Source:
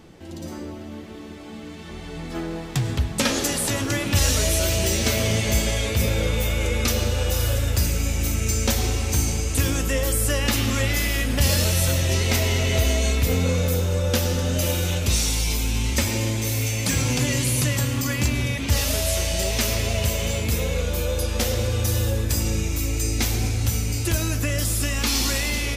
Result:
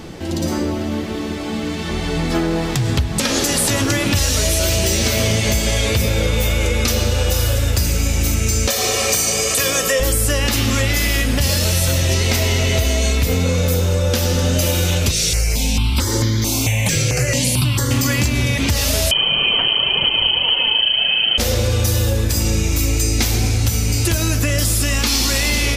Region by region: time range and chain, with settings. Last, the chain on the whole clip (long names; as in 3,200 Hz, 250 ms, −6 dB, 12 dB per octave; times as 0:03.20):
0:08.68–0:10.00: high-pass filter 290 Hz + comb filter 1.7 ms, depth 68%
0:15.11–0:17.91: high-shelf EQ 10,000 Hz −7 dB + step-sequenced phaser 4.5 Hz 250–2,600 Hz
0:19.11–0:21.38: phase shifter 1.7 Hz, delay 4.2 ms, feedback 42% + voice inversion scrambler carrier 3,100 Hz
whole clip: parametric band 4,800 Hz +2.5 dB; downward compressor, threshold −28 dBFS; boost into a limiter +19 dB; level −5 dB